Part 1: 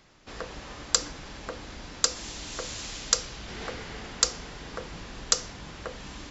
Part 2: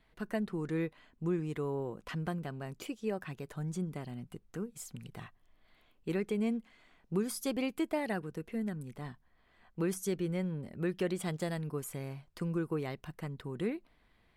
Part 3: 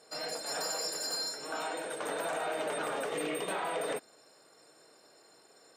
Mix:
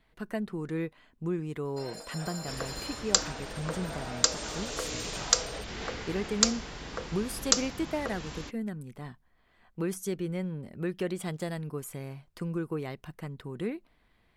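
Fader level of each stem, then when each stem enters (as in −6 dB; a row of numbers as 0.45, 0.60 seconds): 0.0, +1.0, −7.0 decibels; 2.20, 0.00, 1.65 seconds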